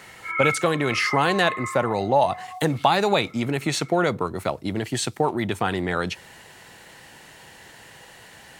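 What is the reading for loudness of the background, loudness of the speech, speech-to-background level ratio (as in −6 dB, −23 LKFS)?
−29.0 LKFS, −23.5 LKFS, 5.5 dB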